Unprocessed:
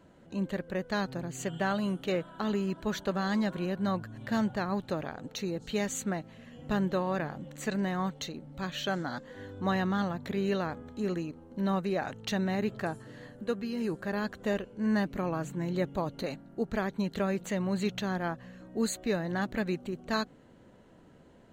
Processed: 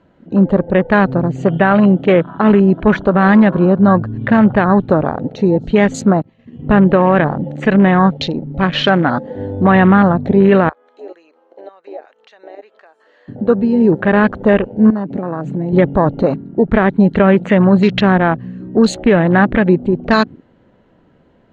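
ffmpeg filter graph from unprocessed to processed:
-filter_complex "[0:a]asettb=1/sr,asplit=3[a][b][c];[a]atrim=end=6.224[d];[b]atrim=start=6.22:end=6.69,asetpts=PTS-STARTPTS,afade=t=in:d=0.004:c=qsin,afade=t=out:st=0.466:d=0.004:c=qsin,bandreject=f=1.5k:w=6,agate=range=-33dB:threshold=-45dB:ratio=3:release=100:detection=peak[e];[c]atrim=start=6.686[f];[d][e]acrossfade=d=0.004:c1=hsin:c2=qsin[g];[g][f]acrossfade=d=0.004:c1=qsin:c2=hsin,asettb=1/sr,asplit=3[h][i][j];[h]atrim=end=10.694[k];[i]atrim=start=10.69:end=13.28,asetpts=PTS-STARTPTS,afade=t=in:d=0.004:c=qsin,afade=t=out:st=2.586:d=0.004:c=qsin,highpass=f=470:w=0.5412,highpass=f=470:w=1.3066,acompressor=threshold=-54dB:ratio=2.5:attack=3.2:release=140:knee=1:detection=peak[l];[j]atrim=start=13.276[m];[k][l]acrossfade=d=0.004:c1=hsin:c2=qsin[n];[n][m]acrossfade=d=0.004:c1=qsin:c2=hsin,asettb=1/sr,asplit=3[o][p][q];[o]atrim=end=14.904[r];[p]atrim=start=14.9:end=15.73,asetpts=PTS-STARTPTS,afade=t=in:d=0.004:c=qsin,afade=t=out:st=0.826:d=0.004:c=qsin,highpass=130,acompressor=threshold=-36dB:ratio=12:attack=3.2:release=140:knee=1:detection=peak[s];[q]atrim=start=15.726[t];[r][s]acrossfade=d=0.004:c1=hsin:c2=qsin[u];[u][t]acrossfade=d=0.004:c1=qsin:c2=hsin,afwtdn=0.00891,lowpass=3.6k,alimiter=level_in=22.5dB:limit=-1dB:release=50:level=0:latency=1,volume=-1dB"

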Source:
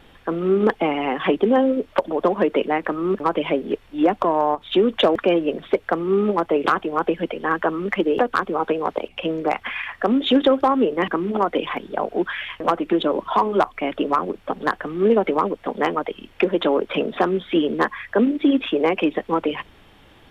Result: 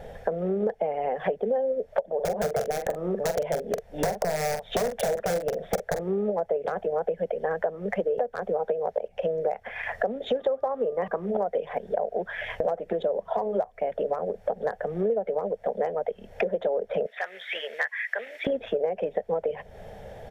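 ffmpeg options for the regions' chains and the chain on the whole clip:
-filter_complex "[0:a]asettb=1/sr,asplit=3[a][b][c];[a]atrim=end=2.154[d];[b]atrim=start=2.15:end=6.01,asetpts=PTS-STARTPTS,afade=t=in:d=0.004:c=qsin,afade=t=out:st=3.856:d=0.004:c=qsin,aeval=exprs='(mod(3.76*val(0)+1,2)-1)/3.76':c=same,asplit=2[e][f];[f]adelay=45,volume=-8.5dB[g];[e][g]amix=inputs=2:normalize=0,atrim=end_sample=170226[h];[c]atrim=start=6.006[i];[d][h]acrossfade=d=0.004:c1=hsin:c2=qsin[j];[j][i]acrossfade=d=0.004:c1=qsin:c2=hsin,asettb=1/sr,asplit=3[k][l][m];[k]atrim=end=10.394[n];[l]atrim=start=10.39:end=11.26,asetpts=PTS-STARTPTS,afade=t=in:d=0.004:c=qsin,afade=t=out:st=0.866:d=0.004:c=qsin,equalizer=f=1.1k:w=2.6:g=10.5,aeval=exprs='val(0)+0.0126*sin(2*PI*1200*n/s)':c=same[o];[m]atrim=start=11.256[p];[n][o]acrossfade=d=0.004:c1=hsin:c2=qsin[q];[q][p]acrossfade=d=0.004:c1=qsin:c2=hsin,asettb=1/sr,asplit=3[r][s][t];[r]atrim=end=17.064[u];[s]atrim=start=17.06:end=18.47,asetpts=PTS-STARTPTS,afade=t=in:d=0.004:c=qsin,afade=t=out:st=1.406:d=0.004:c=qsin,highpass=f=2k:t=q:w=3,acompressor=mode=upward:threshold=-38dB:ratio=2.5:attack=3.2:release=140:knee=2.83:detection=peak[v];[t]atrim=start=18.466[w];[u][v]acrossfade=d=0.004:c1=hsin:c2=qsin[x];[x][w]acrossfade=d=0.004:c1=qsin:c2=hsin,firequalizer=gain_entry='entry(200,0);entry(300,-18);entry(450,7);entry(650,10);entry(1100,-15);entry(1700,-4);entry(2800,-16);entry(5800,-3);entry(8600,-6)':delay=0.05:min_phase=1,acompressor=threshold=-33dB:ratio=6,volume=7.5dB"

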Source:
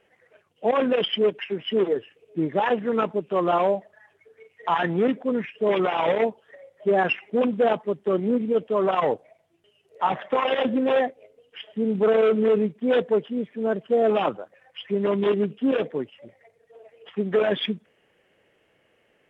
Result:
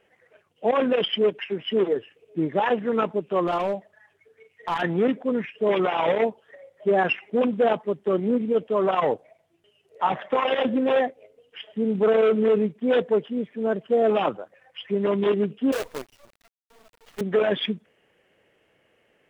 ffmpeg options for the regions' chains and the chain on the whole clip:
-filter_complex "[0:a]asettb=1/sr,asplit=3[a][b][c];[a]atrim=end=3.474[d];[b]atrim=start=3.47:end=4.82,asetpts=PTS-STARTPTS,afade=t=in:d=0.004:c=qsin,afade=t=out:st=1.346:d=0.004:c=qsin,equalizer=f=620:w=0.48:g=-4,aeval=exprs='clip(val(0),-1,0.0891)':c=same[e];[c]atrim=start=4.816[f];[d][e]acrossfade=d=0.004:c1=hsin:c2=qsin[g];[g][f]acrossfade=d=0.004:c1=qsin:c2=hsin,asettb=1/sr,asplit=3[h][i][j];[h]atrim=end=15.724[k];[i]atrim=start=15.72:end=17.21,asetpts=PTS-STARTPTS,afade=t=in:d=0.004:c=qsin,afade=t=out:st=1.486:d=0.004:c=qsin,highpass=560,lowpass=2.4k,acrusher=bits=6:dc=4:mix=0:aa=0.000001[l];[j]atrim=start=17.206[m];[k][l]acrossfade=d=0.004:c1=hsin:c2=qsin[n];[n][m]acrossfade=d=0.004:c1=qsin:c2=hsin"

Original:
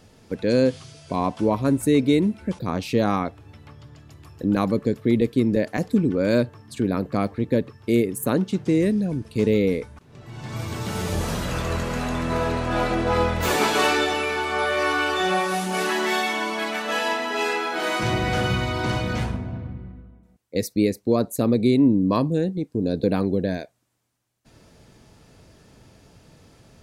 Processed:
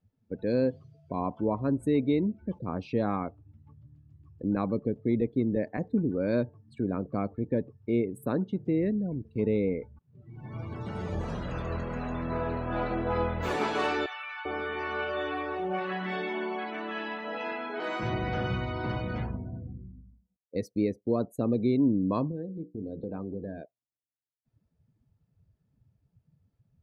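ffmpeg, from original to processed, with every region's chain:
-filter_complex "[0:a]asettb=1/sr,asplit=3[a][b][c];[a]atrim=end=14.064[d];[b]atrim=start=14.06:end=17.8,asetpts=PTS-STARTPTS,afade=t=in:d=0.004:c=qsin,afade=t=out:st=3.736:d=0.004:c=qsin,acrossover=split=3900[e][f];[f]acompressor=threshold=-43dB:ratio=4:attack=1:release=60[g];[e][g]amix=inputs=2:normalize=0,acrossover=split=950[h][i];[h]adelay=390[j];[j][i]amix=inputs=2:normalize=0,atrim=end_sample=164934[k];[c]atrim=start=17.796[l];[d][k]acrossfade=d=0.004:c1=hsin:c2=qsin[m];[m][l]acrossfade=d=0.004:c1=qsin:c2=hsin,asettb=1/sr,asplit=3[n][o][p];[n]atrim=end=22.314[q];[o]atrim=start=22.31:end=23.61,asetpts=PTS-STARTPTS,afade=t=in:d=0.004:c=qsin,afade=t=out:st=1.296:d=0.004:c=qsin,acompressor=threshold=-26dB:ratio=2.5:attack=3.2:release=140:knee=1:detection=peak,bandreject=f=60:t=h:w=6,bandreject=f=120:t=h:w=6,bandreject=f=180:t=h:w=6,bandreject=f=240:t=h:w=6,bandreject=f=300:t=h:w=6,bandreject=f=360:t=h:w=6,bandreject=f=420:t=h:w=6,bandreject=f=480:t=h:w=6,bandreject=f=540:t=h:w=6,bandreject=f=600:t=h:w=6[r];[p]atrim=start=23.606[s];[q][r]acrossfade=d=0.004:c1=hsin:c2=qsin[t];[t][s]acrossfade=d=0.004:c1=qsin:c2=hsin,afftdn=nr=24:nf=-37,lowpass=f=2k:p=1,volume=-7dB"

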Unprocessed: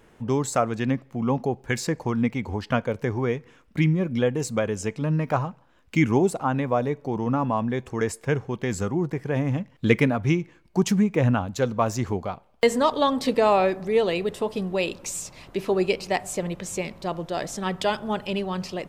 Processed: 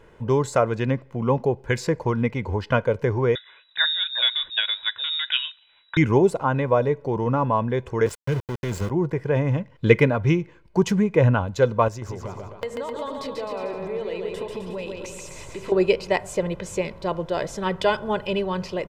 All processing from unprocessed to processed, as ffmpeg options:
-filter_complex "[0:a]asettb=1/sr,asplit=3[a][b][c];[a]atrim=end=3.354[d];[b]atrim=start=3.35:end=5.97,asetpts=PTS-STARTPTS,afade=t=in:d=0.004:c=qsin,afade=t=out:st=2.616:d=0.004:c=qsin,equalizer=f=2.2k:t=o:w=0.35:g=8.5,lowpass=f=3.3k:t=q:w=0.5098,lowpass=f=3.3k:t=q:w=0.6013,lowpass=f=3.3k:t=q:w=0.9,lowpass=f=3.3k:t=q:w=2.563,afreqshift=-3900[e];[c]atrim=start=5.966[f];[d][e]acrossfade=d=0.004:c1=hsin:c2=qsin[g];[g][f]acrossfade=d=0.004:c1=qsin:c2=hsin,asettb=1/sr,asplit=3[h][i][j];[h]atrim=end=8.064[k];[i]atrim=start=8.06:end=8.9,asetpts=PTS-STARTPTS,afade=t=in:d=0.004:c=qsin,afade=t=out:st=0.836:d=0.004:c=qsin,highshelf=f=4.7k:g=3,acrossover=split=310|3000[l][m][n];[m]acompressor=threshold=-41dB:ratio=3:attack=3.2:release=140:knee=2.83:detection=peak[o];[l][o][n]amix=inputs=3:normalize=0,aeval=exprs='val(0)*gte(abs(val(0)),0.0266)':c=same[p];[j]atrim=start=8.896[q];[k][p]acrossfade=d=0.004:c1=hsin:c2=qsin[r];[r][q]acrossfade=d=0.004:c1=qsin:c2=hsin,asettb=1/sr,asplit=3[s][t][u];[s]atrim=end=11.884[v];[t]atrim=start=11.88:end=15.72,asetpts=PTS-STARTPTS,afade=t=in:d=0.004:c=qsin,afade=t=out:st=3.836:d=0.004:c=qsin,acompressor=threshold=-34dB:ratio=5:attack=3.2:release=140:knee=1:detection=peak,aecho=1:1:140|259|360.2|446.1|519.2:0.631|0.398|0.251|0.158|0.1,atrim=end_sample=169344[w];[u]atrim=start=15.716[x];[v][w]acrossfade=d=0.004:c1=hsin:c2=qsin[y];[y][x]acrossfade=d=0.004:c1=qsin:c2=hsin,highshelf=f=5.1k:g=-12,aecho=1:1:2:0.46,volume=3dB"

